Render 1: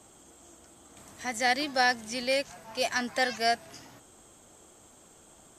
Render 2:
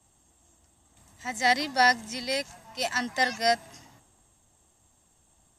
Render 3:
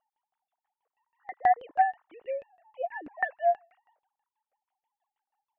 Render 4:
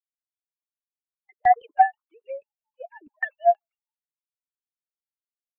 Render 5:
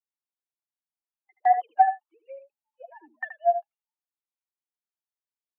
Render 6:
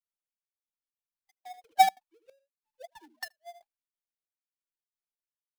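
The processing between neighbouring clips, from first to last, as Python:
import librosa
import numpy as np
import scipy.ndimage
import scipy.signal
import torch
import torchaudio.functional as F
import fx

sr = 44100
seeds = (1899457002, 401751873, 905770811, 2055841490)

y1 = x + 0.41 * np.pad(x, (int(1.1 * sr / 1000.0), 0))[:len(x)]
y1 = fx.band_widen(y1, sr, depth_pct=40)
y2 = fx.sine_speech(y1, sr)
y2 = fx.filter_lfo_lowpass(y2, sr, shape='saw_down', hz=6.2, low_hz=290.0, high_hz=2600.0, q=0.71)
y3 = fx.bin_expand(y2, sr, power=2.0)
y3 = fx.band_widen(y3, sr, depth_pct=70)
y3 = y3 * librosa.db_to_amplitude(3.5)
y4 = scipy.signal.sosfilt(scipy.signal.cheby1(6, 9, 230.0, 'highpass', fs=sr, output='sos'), y3)
y4 = y4 + 10.0 ** (-10.0 / 20.0) * np.pad(y4, (int(77 * sr / 1000.0), 0))[:len(y4)]
y5 = fx.dead_time(y4, sr, dead_ms=0.15)
y5 = fx.step_gate(y5, sr, bpm=183, pattern='xxxx....xxx.', floor_db=-24.0, edge_ms=4.5)
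y5 = y5 * librosa.db_to_amplitude(-1.5)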